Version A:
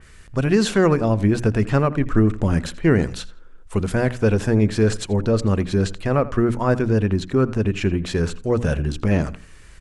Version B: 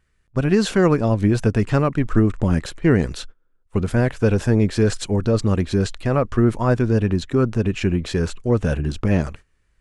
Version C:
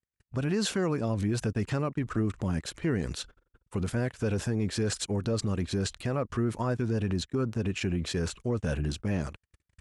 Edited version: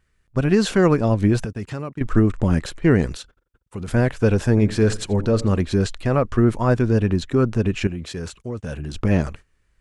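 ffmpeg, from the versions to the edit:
-filter_complex "[2:a]asplit=3[a][b][c];[1:a]asplit=5[d][e][f][g][h];[d]atrim=end=1.452[i];[a]atrim=start=1.448:end=2.012[j];[e]atrim=start=2.008:end=3.172[k];[b]atrim=start=3.168:end=3.882[l];[f]atrim=start=3.878:end=4.572[m];[0:a]atrim=start=4.568:end=5.602[n];[g]atrim=start=5.598:end=7.872[o];[c]atrim=start=7.868:end=8.942[p];[h]atrim=start=8.938[q];[i][j]acrossfade=d=0.004:c1=hsin:c2=hsin[r];[r][k]acrossfade=d=0.004:c1=hsin:c2=hsin[s];[s][l]acrossfade=d=0.004:c1=hsin:c2=hsin[t];[t][m]acrossfade=d=0.004:c1=hsin:c2=hsin[u];[u][n]acrossfade=d=0.004:c1=hsin:c2=hsin[v];[v][o]acrossfade=d=0.004:c1=hsin:c2=hsin[w];[w][p]acrossfade=d=0.004:c1=hsin:c2=hsin[x];[x][q]acrossfade=d=0.004:c1=hsin:c2=hsin"

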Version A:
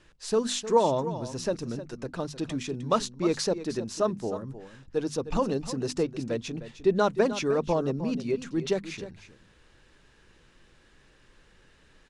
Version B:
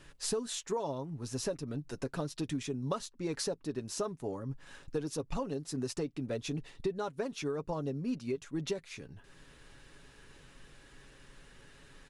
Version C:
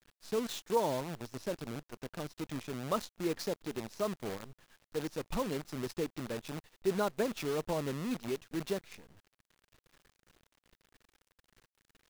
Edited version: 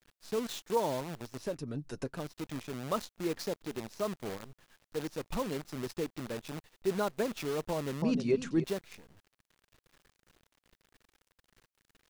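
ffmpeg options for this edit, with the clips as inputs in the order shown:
-filter_complex "[2:a]asplit=3[a][b][c];[a]atrim=end=1.62[d];[1:a]atrim=start=1.38:end=2.27[e];[b]atrim=start=2.03:end=8.022[f];[0:a]atrim=start=8.018:end=8.642[g];[c]atrim=start=8.638[h];[d][e]acrossfade=d=0.24:c1=tri:c2=tri[i];[i][f]acrossfade=d=0.24:c1=tri:c2=tri[j];[j][g]acrossfade=d=0.004:c1=hsin:c2=hsin[k];[k][h]acrossfade=d=0.004:c1=hsin:c2=hsin"

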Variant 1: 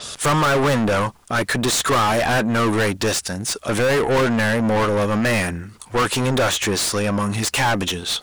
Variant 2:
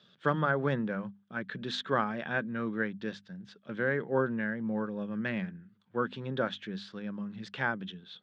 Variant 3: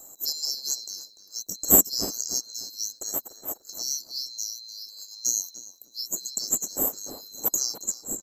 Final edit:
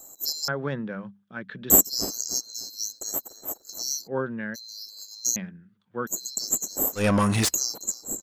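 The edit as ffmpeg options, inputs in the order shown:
-filter_complex "[1:a]asplit=3[a][b][c];[2:a]asplit=5[d][e][f][g][h];[d]atrim=end=0.482[i];[a]atrim=start=0.478:end=1.702[j];[e]atrim=start=1.698:end=4.08[k];[b]atrim=start=4.06:end=4.56[l];[f]atrim=start=4.54:end=5.362[m];[c]atrim=start=5.358:end=6.072[n];[g]atrim=start=6.068:end=7.05[o];[0:a]atrim=start=6.95:end=7.55[p];[h]atrim=start=7.45[q];[i][j]acrossfade=d=0.004:c1=hsin:c2=hsin[r];[r][k]acrossfade=d=0.004:c1=hsin:c2=hsin[s];[s][l]acrossfade=d=0.02:c1=tri:c2=tri[t];[t][m]acrossfade=d=0.02:c1=tri:c2=tri[u];[u][n]acrossfade=d=0.004:c1=hsin:c2=hsin[v];[v][o]acrossfade=d=0.004:c1=hsin:c2=hsin[w];[w][p]acrossfade=d=0.1:c1=tri:c2=tri[x];[x][q]acrossfade=d=0.1:c1=tri:c2=tri"

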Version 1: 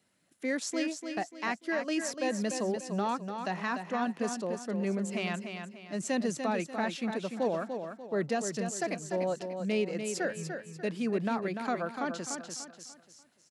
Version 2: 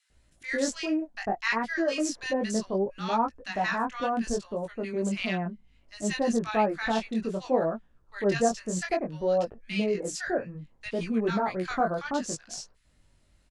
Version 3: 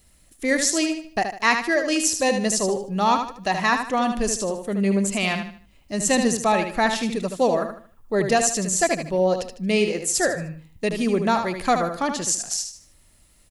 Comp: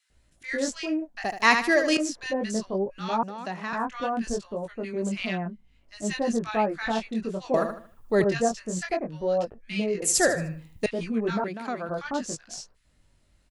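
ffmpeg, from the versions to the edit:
-filter_complex "[2:a]asplit=3[a][b][c];[0:a]asplit=2[d][e];[1:a]asplit=6[f][g][h][i][j][k];[f]atrim=end=1.242[l];[a]atrim=start=1.238:end=1.972[m];[g]atrim=start=1.968:end=3.232[n];[d]atrim=start=3.228:end=3.732[o];[h]atrim=start=3.728:end=7.542[p];[b]atrim=start=7.538:end=8.242[q];[i]atrim=start=8.238:end=10.022[r];[c]atrim=start=10.018:end=10.862[s];[j]atrim=start=10.858:end=11.442[t];[e]atrim=start=11.438:end=11.892[u];[k]atrim=start=11.888[v];[l][m]acrossfade=d=0.004:c1=hsin:c2=hsin[w];[w][n]acrossfade=d=0.004:c1=hsin:c2=hsin[x];[x][o]acrossfade=d=0.004:c1=hsin:c2=hsin[y];[y][p]acrossfade=d=0.004:c1=hsin:c2=hsin[z];[z][q]acrossfade=d=0.004:c1=hsin:c2=hsin[aa];[aa][r]acrossfade=d=0.004:c1=hsin:c2=hsin[ab];[ab][s]acrossfade=d=0.004:c1=hsin:c2=hsin[ac];[ac][t]acrossfade=d=0.004:c1=hsin:c2=hsin[ad];[ad][u]acrossfade=d=0.004:c1=hsin:c2=hsin[ae];[ae][v]acrossfade=d=0.004:c1=hsin:c2=hsin"

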